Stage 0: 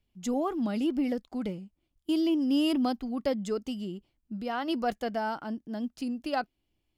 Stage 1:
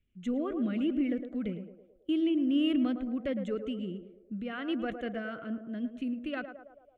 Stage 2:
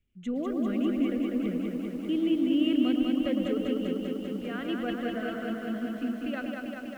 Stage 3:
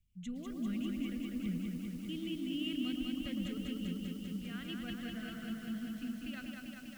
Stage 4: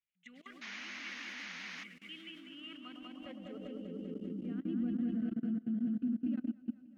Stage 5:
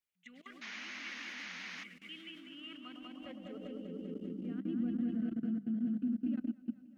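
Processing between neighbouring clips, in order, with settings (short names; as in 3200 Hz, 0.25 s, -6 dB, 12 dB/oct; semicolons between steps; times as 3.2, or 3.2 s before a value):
LPF 4100 Hz 12 dB/oct; fixed phaser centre 2100 Hz, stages 4; narrowing echo 0.109 s, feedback 63%, band-pass 610 Hz, level -7 dB
lo-fi delay 0.197 s, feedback 80%, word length 10-bit, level -3.5 dB
EQ curve 170 Hz 0 dB, 270 Hz -14 dB, 520 Hz -23 dB, 5000 Hz 0 dB; gain +1.5 dB
level quantiser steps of 22 dB; painted sound noise, 0.61–1.84, 300–6800 Hz -52 dBFS; band-pass sweep 2000 Hz -> 260 Hz, 2.12–4.78; gain +13 dB
notches 50/100/150/200 Hz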